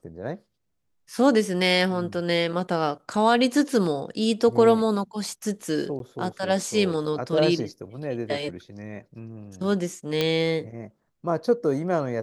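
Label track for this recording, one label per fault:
5.990000	6.000000	drop-out 12 ms
10.210000	10.210000	click −10 dBFS

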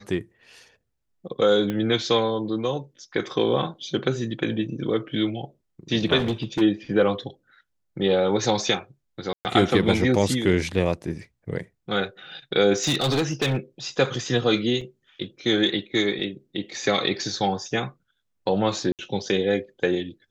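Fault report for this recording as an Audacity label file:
1.700000	1.700000	click −15 dBFS
6.180000	6.620000	clipping −20 dBFS
9.330000	9.450000	drop-out 119 ms
12.780000	13.570000	clipping −18.5 dBFS
14.810000	14.810000	drop-out 4 ms
18.920000	18.990000	drop-out 68 ms

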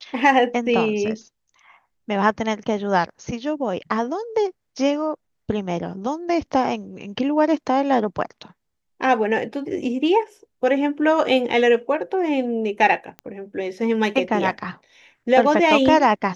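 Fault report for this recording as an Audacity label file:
13.190000	13.190000	click −21 dBFS

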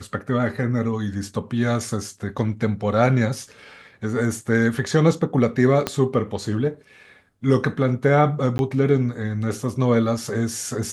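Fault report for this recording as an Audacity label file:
5.870000	5.870000	click −7 dBFS
8.580000	8.590000	drop-out 11 ms

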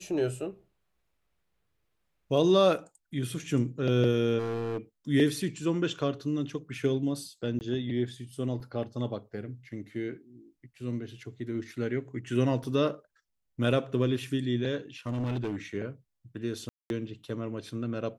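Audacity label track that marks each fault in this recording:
4.380000	4.780000	clipping −28.5 dBFS
7.590000	7.610000	drop-out 19 ms
8.600000	8.600000	drop-out 4.1 ms
12.640000	12.640000	drop-out 4.2 ms
15.070000	15.560000	clipping −27.5 dBFS
16.690000	16.900000	drop-out 211 ms

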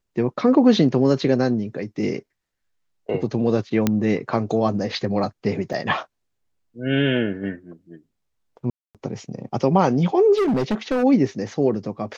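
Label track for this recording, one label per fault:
3.870000	3.870000	click −5 dBFS
5.730000	5.730000	drop-out 4.6 ms
8.700000	8.950000	drop-out 247 ms
10.370000	11.040000	clipping −17 dBFS

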